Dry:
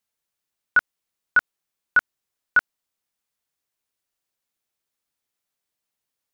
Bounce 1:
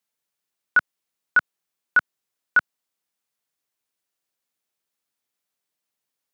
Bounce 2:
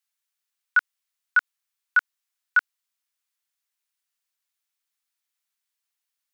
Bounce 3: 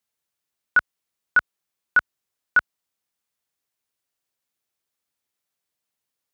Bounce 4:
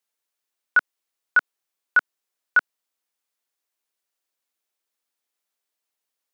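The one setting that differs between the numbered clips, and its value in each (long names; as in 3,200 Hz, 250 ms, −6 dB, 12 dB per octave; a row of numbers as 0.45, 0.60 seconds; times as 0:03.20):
high-pass filter, corner frequency: 120, 1,200, 45, 300 Hertz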